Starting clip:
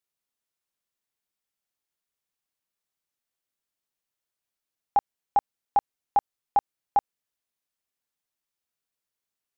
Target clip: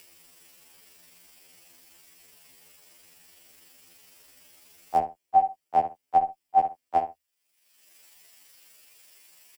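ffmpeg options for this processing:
-filter_complex "[0:a]asetnsamples=n=441:p=0,asendcmd='6.97 highpass f 980',highpass=f=190:p=1,acompressor=mode=upward:threshold=0.00891:ratio=2.5,afreqshift=-52,tremolo=f=24:d=0.919,asplit=2[s0][s1];[s1]adelay=12,volume=0.501[s2];[s0][s2]amix=inputs=2:normalize=0,asplit=2[s3][s4];[s4]adelay=63,lowpass=f=2200:p=1,volume=0.224,asplit=2[s5][s6];[s6]adelay=63,lowpass=f=2200:p=1,volume=0.21[s7];[s3][s5][s7]amix=inputs=3:normalize=0,alimiter=level_in=7.94:limit=0.891:release=50:level=0:latency=1,afftfilt=real='re*2*eq(mod(b,4),0)':imag='im*2*eq(mod(b,4),0)':win_size=2048:overlap=0.75,volume=0.501"

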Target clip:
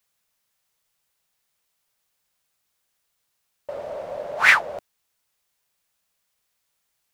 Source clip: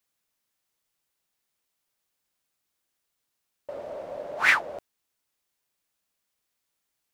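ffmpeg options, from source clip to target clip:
-af "equalizer=f=300:t=o:w=0.72:g=-7.5,volume=1.88"

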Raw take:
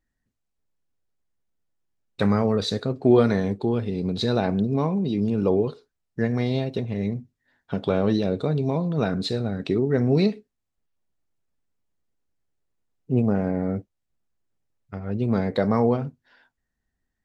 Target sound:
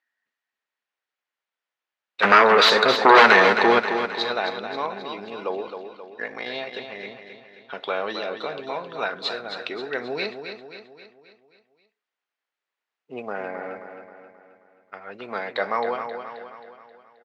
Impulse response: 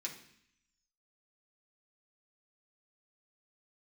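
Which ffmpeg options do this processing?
-filter_complex "[0:a]asettb=1/sr,asplit=3[s0][s1][s2];[s0]atrim=end=5.634[s3];[s1]atrim=start=5.63:end=6.46,asetpts=PTS-STARTPTS,afade=t=in:d=0.004:c=qsin,afade=t=out:st=0.826:d=0.004:c=qsin,aeval=exprs='val(0)*sin(2*PI*26*n/s)':c=same[s4];[s2]atrim=start=6.456[s5];[s3][s4]acrossfade=d=0.004:c1=hsin:c2=qsin[s6];[s6][s5]acrossfade=d=0.004:c1=qsin:c2=hsin,tiltshelf=f=1100:g=-7.5,asplit=3[s7][s8][s9];[s7]afade=t=out:st=2.22:d=0.02[s10];[s8]aeval=exprs='0.376*sin(PI/2*4.47*val(0)/0.376)':c=same,afade=t=in:st=2.22:d=0.02,afade=t=out:st=3.78:d=0.02[s11];[s9]afade=t=in:st=3.78:d=0.02[s12];[s10][s11][s12]amix=inputs=3:normalize=0,highpass=620,lowpass=2500,aecho=1:1:266|532|798|1064|1330|1596:0.398|0.203|0.104|0.0528|0.0269|0.0137,volume=1.78"

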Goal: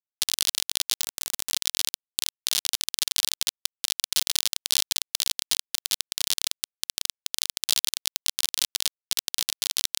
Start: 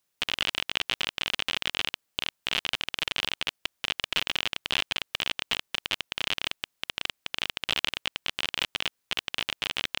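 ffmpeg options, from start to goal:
-filter_complex "[0:a]asettb=1/sr,asplit=3[s0][s1][s2];[s0]atrim=end=1.014[s3];[s1]atrim=start=1.01:end=1.52,asetpts=PTS-STARTPTS,afade=t=in:d=0.004:c=qsin,afade=t=out:st=0.506:d=0.004:c=qsin,equalizer=f=4100:w=0.64:g=-11[s4];[s2]atrim=start=1.516[s5];[s3][s4]acrossfade=d=0.004:c1=hsin:c2=qsin[s6];[s6][s5]acrossfade=d=0.004:c1=qsin:c2=hsin,acontrast=50,aexciter=amount=14.4:drive=7.1:freq=4200,aeval=exprs='sgn(val(0))*max(abs(val(0))-0.0299,0)':c=same,volume=0.251"

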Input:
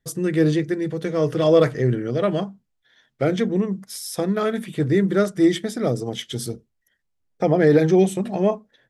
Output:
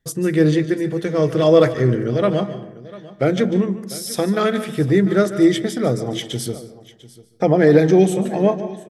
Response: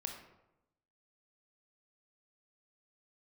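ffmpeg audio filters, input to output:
-filter_complex "[0:a]asettb=1/sr,asplit=3[s0][s1][s2];[s0]atrim=end=4.114[s3];[s1]atrim=start=4.11:end=4.67,asetpts=PTS-STARTPTS,afade=t=in:d=0.004:c=qsin,afade=t=out:st=0.556:d=0.004:c=qsin,equalizer=f=3500:w=0.46:g=4.5[s4];[s2]atrim=start=4.666[s5];[s3][s4]acrossfade=d=0.004:c1=hsin:c2=qsin[s6];[s6][s5]acrossfade=d=0.004:c1=qsin:c2=hsin,aecho=1:1:697:0.112,asplit=2[s7][s8];[1:a]atrim=start_sample=2205,adelay=146[s9];[s8][s9]afir=irnorm=-1:irlink=0,volume=0.282[s10];[s7][s10]amix=inputs=2:normalize=0,volume=1.41"

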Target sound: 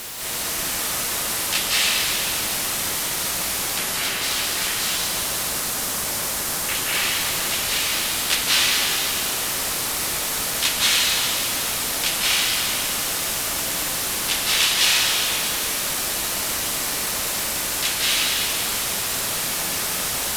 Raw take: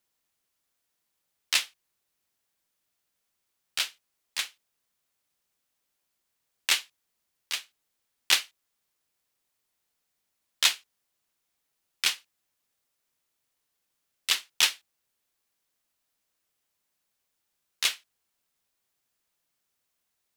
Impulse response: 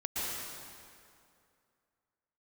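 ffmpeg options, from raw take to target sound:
-filter_complex "[0:a]aeval=exprs='val(0)+0.5*0.0708*sgn(val(0))':c=same,asettb=1/sr,asplit=3[s0][s1][s2];[s0]atrim=end=3.784[s3];[s1]atrim=start=3.78:end=6.75,asetpts=PTS-STARTPTS,afade=t=in:d=0.004:c=qsin,afade=t=out:st=2.966:d=0.004:c=qsin,acrossover=split=3000[s4][s5];[s5]adelay=250[s6];[s4][s6]amix=inputs=2:normalize=0,atrim=end_sample=130977[s7];[s2]atrim=start=6.746[s8];[s3][s7]acrossfade=d=0.004:c1=hsin:c2=qsin[s9];[s9][s8]acrossfade=d=0.004:c1=qsin:c2=hsin[s10];[1:a]atrim=start_sample=2205,asetrate=28665,aresample=44100[s11];[s10][s11]afir=irnorm=-1:irlink=0,volume=0.794"

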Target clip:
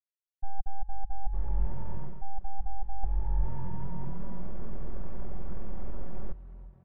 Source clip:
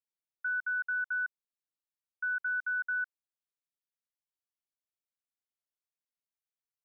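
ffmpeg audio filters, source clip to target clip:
-filter_complex "[0:a]aeval=exprs='val(0)+0.5*0.00473*sgn(val(0))':c=same,dynaudnorm=f=450:g=5:m=4.47,asoftclip=type=tanh:threshold=0.112,acrusher=bits=4:dc=4:mix=0:aa=0.000001,lowpass=1400,asplit=6[s0][s1][s2][s3][s4][s5];[s1]adelay=338,afreqshift=85,volume=0.141[s6];[s2]adelay=676,afreqshift=170,volume=0.0759[s7];[s3]adelay=1014,afreqshift=255,volume=0.0412[s8];[s4]adelay=1352,afreqshift=340,volume=0.0221[s9];[s5]adelay=1690,afreqshift=425,volume=0.012[s10];[s0][s6][s7][s8][s9][s10]amix=inputs=6:normalize=0,alimiter=level_in=2.24:limit=0.0631:level=0:latency=1:release=346,volume=0.447,aecho=1:1:2.8:0.66,areverse,acompressor=threshold=0.00794:ratio=16,areverse,asetrate=23361,aresample=44100,atempo=1.88775,aemphasis=mode=reproduction:type=riaa,volume=1.78"

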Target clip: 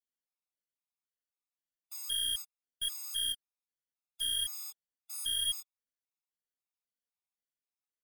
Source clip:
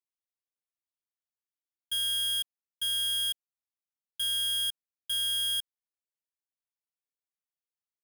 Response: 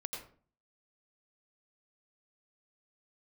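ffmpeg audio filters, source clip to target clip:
-filter_complex "[0:a]aecho=1:1:4.1:0.54,flanger=delay=15:depth=6.1:speed=1,asplit=2[s0][s1];[s1]acrusher=bits=4:dc=4:mix=0:aa=0.000001,volume=0.299[s2];[s0][s2]amix=inputs=2:normalize=0,afftfilt=real='re*gt(sin(2*PI*1.9*pts/sr)*(1-2*mod(floor(b*sr/1024/690),2)),0)':imag='im*gt(sin(2*PI*1.9*pts/sr)*(1-2*mod(floor(b*sr/1024/690),2)),0)':win_size=1024:overlap=0.75"

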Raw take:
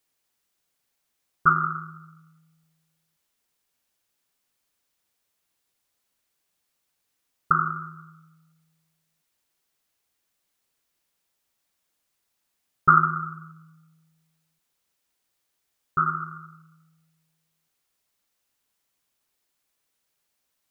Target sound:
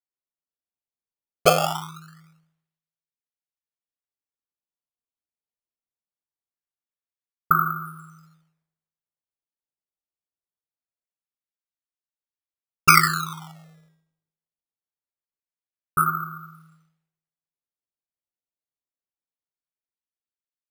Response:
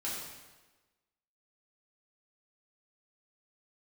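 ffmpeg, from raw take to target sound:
-af "bandreject=f=106.6:t=h:w=4,bandreject=f=213.2:t=h:w=4,bandreject=f=319.8:t=h:w=4,bandreject=f=426.4:t=h:w=4,bandreject=f=533:t=h:w=4,bandreject=f=639.6:t=h:w=4,bandreject=f=746.2:t=h:w=4,bandreject=f=852.8:t=h:w=4,bandreject=f=959.4:t=h:w=4,bandreject=f=1066:t=h:w=4,bandreject=f=1172.6:t=h:w=4,bandreject=f=1279.2:t=h:w=4,bandreject=f=1385.8:t=h:w=4,bandreject=f=1492.4:t=h:w=4,bandreject=f=1599:t=h:w=4,bandreject=f=1705.6:t=h:w=4,bandreject=f=1812.2:t=h:w=4,bandreject=f=1918.8:t=h:w=4,bandreject=f=2025.4:t=h:w=4,bandreject=f=2132:t=h:w=4,bandreject=f=2238.6:t=h:w=4,bandreject=f=2345.2:t=h:w=4,bandreject=f=2451.8:t=h:w=4,bandreject=f=2558.4:t=h:w=4,bandreject=f=2665:t=h:w=4,bandreject=f=2771.6:t=h:w=4,bandreject=f=2878.2:t=h:w=4,bandreject=f=2984.8:t=h:w=4,bandreject=f=3091.4:t=h:w=4,bandreject=f=3198:t=h:w=4,acrusher=samples=14:mix=1:aa=0.000001:lfo=1:lforange=22.4:lforate=0.23,agate=range=0.0224:threshold=0.00178:ratio=3:detection=peak,volume=1.33"

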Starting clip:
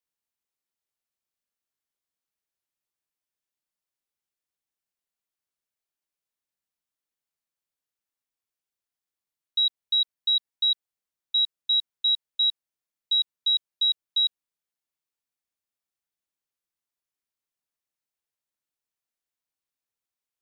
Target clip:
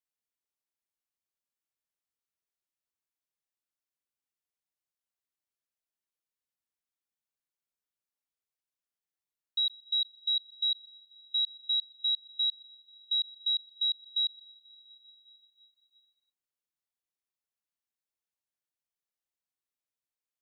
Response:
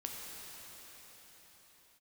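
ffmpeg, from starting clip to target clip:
-filter_complex "[0:a]asplit=2[s0][s1];[1:a]atrim=start_sample=2205,adelay=125[s2];[s1][s2]afir=irnorm=-1:irlink=0,volume=0.112[s3];[s0][s3]amix=inputs=2:normalize=0,volume=0.501"

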